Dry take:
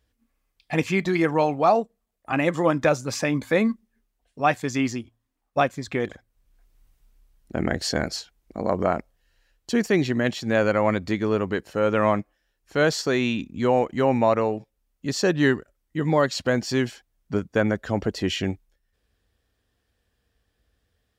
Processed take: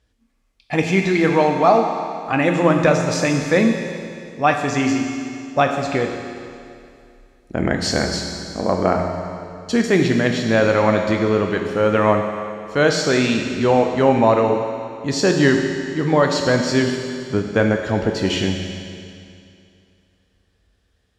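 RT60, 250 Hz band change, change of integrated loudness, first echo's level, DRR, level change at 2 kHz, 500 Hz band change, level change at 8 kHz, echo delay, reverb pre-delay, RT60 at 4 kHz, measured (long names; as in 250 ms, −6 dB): 2.5 s, +6.0 dB, +5.5 dB, no echo audible, 3.0 dB, +5.5 dB, +5.5 dB, +6.0 dB, no echo audible, 11 ms, 2.4 s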